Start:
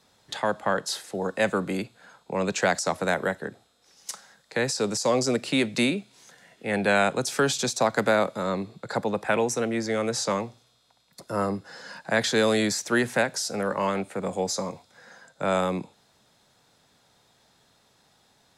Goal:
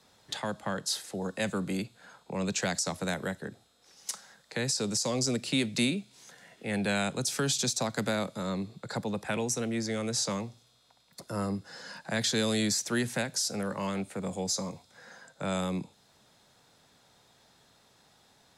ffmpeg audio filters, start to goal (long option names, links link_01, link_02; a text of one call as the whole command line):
ffmpeg -i in.wav -filter_complex "[0:a]acrossover=split=240|3000[link_01][link_02][link_03];[link_02]acompressor=threshold=-51dB:ratio=1.5[link_04];[link_01][link_04][link_03]amix=inputs=3:normalize=0" out.wav